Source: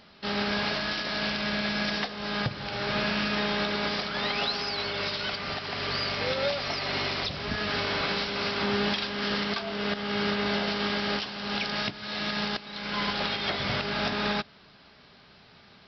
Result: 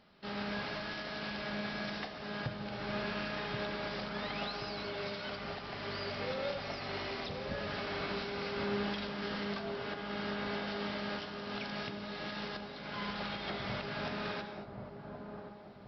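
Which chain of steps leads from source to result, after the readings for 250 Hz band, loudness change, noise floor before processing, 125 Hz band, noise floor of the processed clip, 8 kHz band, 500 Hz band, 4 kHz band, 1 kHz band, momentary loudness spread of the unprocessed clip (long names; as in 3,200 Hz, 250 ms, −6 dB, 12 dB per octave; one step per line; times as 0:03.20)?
−8.0 dB, −10.0 dB, −55 dBFS, −7.0 dB, −48 dBFS, can't be measured, −7.0 dB, −13.0 dB, −8.5 dB, 4 LU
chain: high-shelf EQ 2,500 Hz −7.5 dB
on a send: delay with a low-pass on its return 1,080 ms, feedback 44%, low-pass 870 Hz, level −5.5 dB
on the sum: reverb whose tail is shaped and stops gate 260 ms flat, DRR 6.5 dB
level −8.5 dB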